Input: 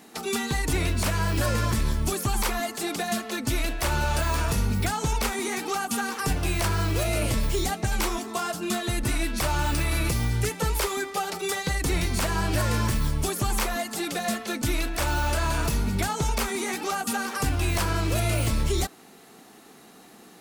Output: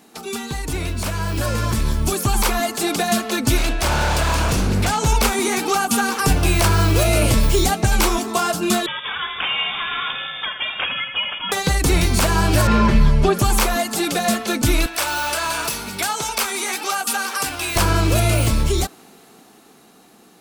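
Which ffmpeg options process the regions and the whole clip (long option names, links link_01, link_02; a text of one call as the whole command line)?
ffmpeg -i in.wav -filter_complex "[0:a]asettb=1/sr,asplit=3[link_01][link_02][link_03];[link_01]atrim=end=3.574[link_04];[link_02]atrim=start=3.57:end=5.06,asetpts=PTS-STARTPTS,afade=type=in:duration=0.004:curve=qsin,afade=type=out:start_time=1.486:duration=0.004:curve=qsin,lowpass=9500,aeval=exprs='0.075*(abs(mod(val(0)/0.075+3,4)-2)-1)':channel_layout=same[link_05];[link_03]atrim=start=5.056[link_06];[link_04][link_05]acrossfade=duration=0.004:curve1=hsin:curve2=qsin[link_07];[link_07][link_06]acrossfade=duration=0.004:curve1=qsin:curve2=hsin,asettb=1/sr,asplit=3[link_08][link_09][link_10];[link_08]atrim=end=8.864[link_11];[link_09]atrim=start=8.86:end=11.52,asetpts=PTS-STARTPTS,afade=type=in:duration=0.004:curve=qsin,afade=type=out:start_time=2.656:duration=0.004:curve=qsin,highpass=frequency=910:poles=1,aecho=1:1:81|162|243|324|405|486|567:0.316|0.183|0.106|0.0617|0.0358|0.0208|0.012,atrim=end_sample=117306,lowpass=frequency=3100:width_type=q:width=0.5098,lowpass=frequency=3100:width_type=q:width=0.6013,lowpass=frequency=3100:width_type=q:width=0.9,lowpass=frequency=3100:width_type=q:width=2.563,afreqshift=-3700[link_12];[link_10]atrim=start=11.516[link_13];[link_11][link_12]acrossfade=duration=0.004:curve1=hsin:curve2=qsin[link_14];[link_14][link_13]acrossfade=duration=0.004:curve1=qsin:curve2=hsin,asettb=1/sr,asplit=3[link_15][link_16][link_17];[link_15]atrim=end=12.674[link_18];[link_16]atrim=start=12.67:end=13.39,asetpts=PTS-STARTPTS,afade=type=in:duration=0.004:curve=qsin,afade=type=out:start_time=0.716:duration=0.004:curve=qsin,aemphasis=mode=reproduction:type=50fm,acrossover=split=4400[link_19][link_20];[link_20]acompressor=threshold=-54dB:ratio=4:attack=1:release=60[link_21];[link_19][link_21]amix=inputs=2:normalize=0,aecho=1:1:5:0.91,atrim=end_sample=31752[link_22];[link_17]atrim=start=13.386[link_23];[link_18][link_22]acrossfade=duration=0.004:curve1=hsin:curve2=qsin[link_24];[link_24][link_23]acrossfade=duration=0.004:curve1=qsin:curve2=hsin,asettb=1/sr,asplit=3[link_25][link_26][link_27];[link_25]atrim=end=14.864[link_28];[link_26]atrim=start=14.86:end=17.76,asetpts=PTS-STARTPTS,afade=type=in:duration=0.004:curve=qsin,afade=type=out:start_time=2.896:duration=0.004:curve=qsin,highpass=frequency=1100:poles=1,bandreject=frequency=6800:width=21[link_29];[link_27]atrim=start=17.756[link_30];[link_28][link_29]acrossfade=duration=0.004:curve1=hsin:curve2=qsin[link_31];[link_31][link_30]acrossfade=duration=0.004:curve1=qsin:curve2=hsin,equalizer=frequency=1900:width=7.3:gain=-5,dynaudnorm=framelen=310:gausssize=13:maxgain=9.5dB" out.wav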